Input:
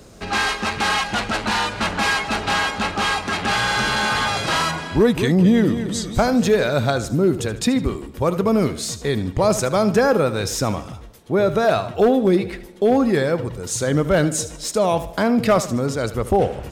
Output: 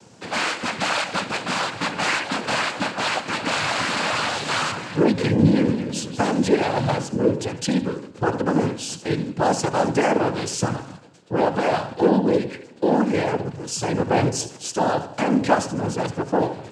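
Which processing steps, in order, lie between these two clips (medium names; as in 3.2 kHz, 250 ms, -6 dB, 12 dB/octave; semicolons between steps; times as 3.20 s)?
noise-vocoded speech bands 8; de-hum 135.4 Hz, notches 30; trim -2 dB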